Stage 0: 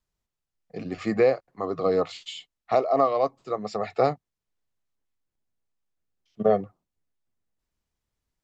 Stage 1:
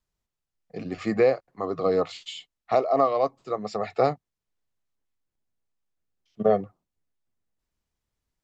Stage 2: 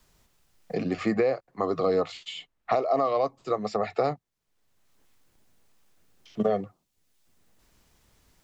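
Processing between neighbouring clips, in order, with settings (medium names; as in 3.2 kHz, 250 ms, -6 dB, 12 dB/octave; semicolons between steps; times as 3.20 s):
no audible change
peak limiter -14 dBFS, peak gain reduction 5 dB; three bands compressed up and down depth 70%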